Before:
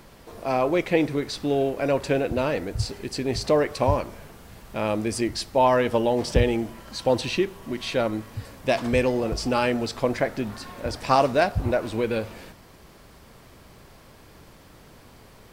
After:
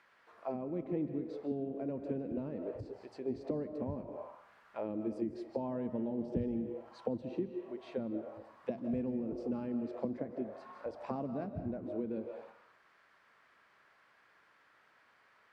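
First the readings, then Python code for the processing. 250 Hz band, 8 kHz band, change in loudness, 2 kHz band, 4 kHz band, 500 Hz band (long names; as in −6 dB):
−9.5 dB, below −35 dB, −14.5 dB, −28.0 dB, below −30 dB, −16.0 dB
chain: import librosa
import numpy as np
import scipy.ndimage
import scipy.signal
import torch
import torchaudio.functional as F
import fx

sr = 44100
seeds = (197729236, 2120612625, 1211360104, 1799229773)

y = fx.rev_freeverb(x, sr, rt60_s=0.87, hf_ratio=0.7, predelay_ms=115, drr_db=8.0)
y = fx.auto_wah(y, sr, base_hz=210.0, top_hz=1800.0, q=2.1, full_db=-19.5, direction='down')
y = y * librosa.db_to_amplitude(-7.0)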